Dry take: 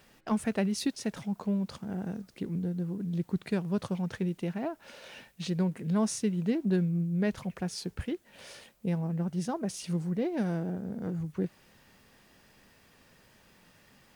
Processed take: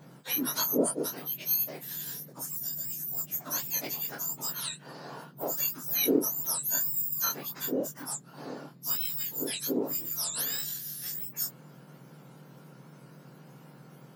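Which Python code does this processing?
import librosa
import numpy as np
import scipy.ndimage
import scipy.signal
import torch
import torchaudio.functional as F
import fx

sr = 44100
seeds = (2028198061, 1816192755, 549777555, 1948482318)

y = fx.octave_mirror(x, sr, pivot_hz=1600.0)
y = fx.detune_double(y, sr, cents=46)
y = F.gain(torch.from_numpy(y), 9.0).numpy()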